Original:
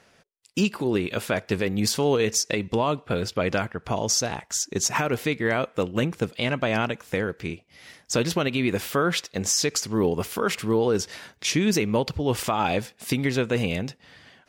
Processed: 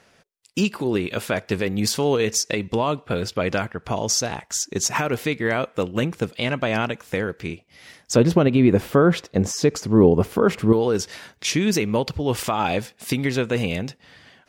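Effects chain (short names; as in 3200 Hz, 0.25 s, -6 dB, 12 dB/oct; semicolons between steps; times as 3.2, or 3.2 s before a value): 8.16–10.73 tilt shelf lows +8.5 dB, about 1300 Hz; gain +1.5 dB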